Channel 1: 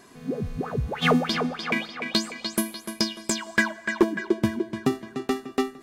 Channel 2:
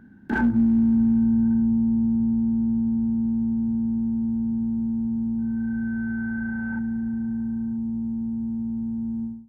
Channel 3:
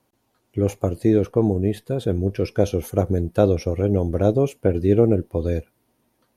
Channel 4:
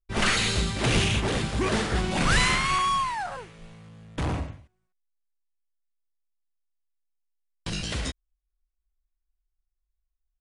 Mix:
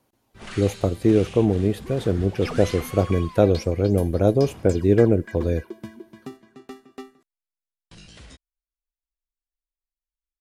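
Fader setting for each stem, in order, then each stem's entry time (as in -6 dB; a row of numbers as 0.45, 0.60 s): -14.0 dB, off, 0.0 dB, -15.0 dB; 1.40 s, off, 0.00 s, 0.25 s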